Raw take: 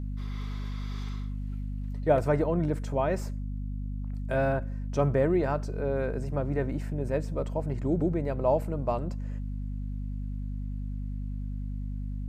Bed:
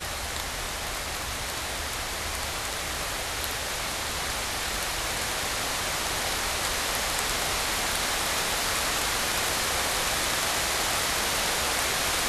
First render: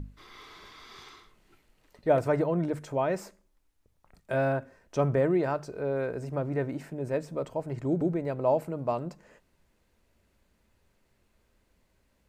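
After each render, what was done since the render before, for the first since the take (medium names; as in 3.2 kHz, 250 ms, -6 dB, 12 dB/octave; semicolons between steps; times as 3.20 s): hum notches 50/100/150/200/250 Hz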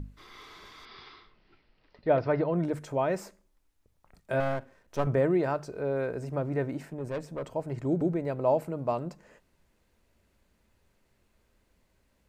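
0.85–2.54 s: elliptic low-pass 5.1 kHz; 4.40–5.07 s: partial rectifier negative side -12 dB; 6.85–7.45 s: valve stage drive 28 dB, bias 0.45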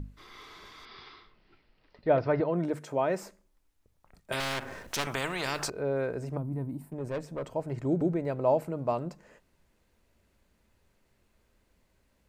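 2.40–3.23 s: high-pass 160 Hz; 4.32–5.70 s: spectrum-flattening compressor 4:1; 6.37–6.92 s: FFT filter 250 Hz 0 dB, 360 Hz -10 dB, 530 Hz -15 dB, 1 kHz -5 dB, 1.5 kHz -20 dB, 2.7 kHz -18 dB, 4.2 kHz -13 dB, 6.4 kHz -17 dB, 9.8 kHz +5 dB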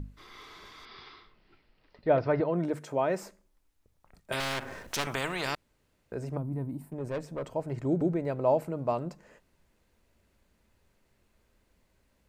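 5.55–6.12 s: room tone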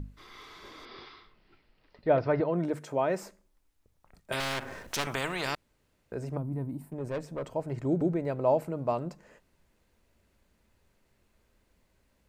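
0.64–1.06 s: small resonant body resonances 320/520 Hz, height 10 dB, ringing for 20 ms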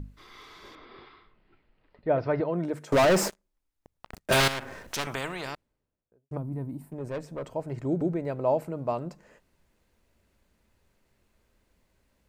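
0.75–2.19 s: distance through air 280 m; 2.92–4.48 s: waveshaping leveller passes 5; 5.04–6.31 s: studio fade out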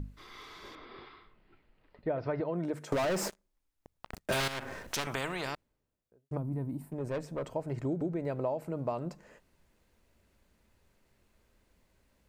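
compression 10:1, threshold -29 dBFS, peak gain reduction 10.5 dB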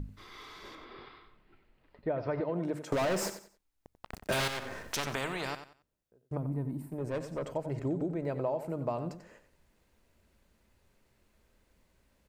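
feedback delay 91 ms, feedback 27%, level -11 dB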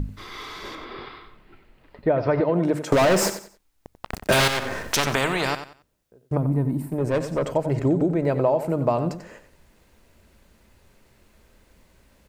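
trim +12 dB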